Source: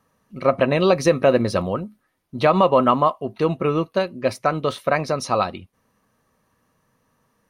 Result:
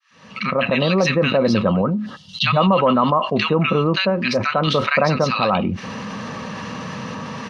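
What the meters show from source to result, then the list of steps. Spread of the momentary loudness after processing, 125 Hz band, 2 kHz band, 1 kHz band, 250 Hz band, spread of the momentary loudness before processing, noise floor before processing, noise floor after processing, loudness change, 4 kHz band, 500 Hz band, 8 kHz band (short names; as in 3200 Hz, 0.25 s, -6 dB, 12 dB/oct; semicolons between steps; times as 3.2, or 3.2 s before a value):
14 LU, +5.5 dB, +7.0 dB, +1.5 dB, +4.5 dB, 8 LU, -69 dBFS, -43 dBFS, +2.0 dB, +9.5 dB, 0.0 dB, -0.5 dB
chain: opening faded in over 1.37 s; speaker cabinet 130–5300 Hz, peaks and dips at 200 Hz +5 dB, 290 Hz -4 dB, 420 Hz -4 dB, 680 Hz -5 dB, 2700 Hz +4 dB; notch 360 Hz, Q 12; spectral gain 2.06–2.47, 200–2700 Hz -21 dB; random-step tremolo 3.5 Hz; bands offset in time highs, lows 0.1 s, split 1500 Hz; fast leveller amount 70%; gain +2 dB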